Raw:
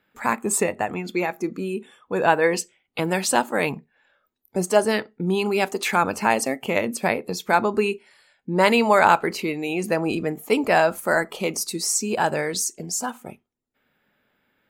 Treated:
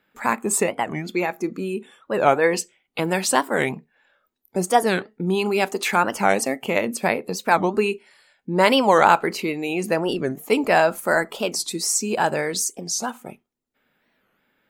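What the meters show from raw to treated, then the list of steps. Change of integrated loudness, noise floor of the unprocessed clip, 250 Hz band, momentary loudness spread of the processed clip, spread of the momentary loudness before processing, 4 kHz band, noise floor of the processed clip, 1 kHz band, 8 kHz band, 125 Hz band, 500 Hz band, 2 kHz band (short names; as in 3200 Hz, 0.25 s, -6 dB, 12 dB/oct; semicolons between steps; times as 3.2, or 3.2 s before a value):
+1.0 dB, -71 dBFS, +0.5 dB, 10 LU, 10 LU, +2.5 dB, -70 dBFS, +1.5 dB, +1.0 dB, +0.5 dB, +1.0 dB, +0.5 dB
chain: bell 88 Hz -7 dB 0.77 oct; record warp 45 rpm, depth 250 cents; gain +1 dB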